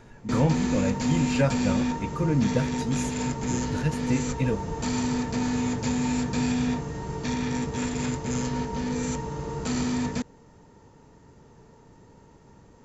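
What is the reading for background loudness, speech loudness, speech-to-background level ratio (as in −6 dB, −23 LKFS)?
−28.5 LKFS, −28.5 LKFS, 0.0 dB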